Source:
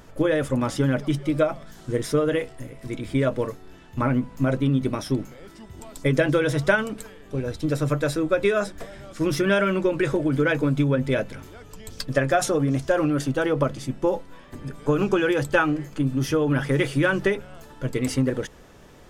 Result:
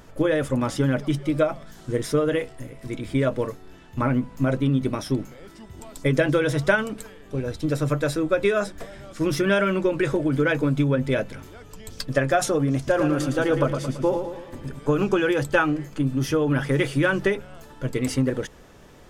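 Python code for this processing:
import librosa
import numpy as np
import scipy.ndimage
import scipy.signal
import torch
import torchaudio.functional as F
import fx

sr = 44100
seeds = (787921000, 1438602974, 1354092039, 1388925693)

y = fx.echo_feedback(x, sr, ms=112, feedback_pct=49, wet_db=-7.0, at=(12.76, 14.79))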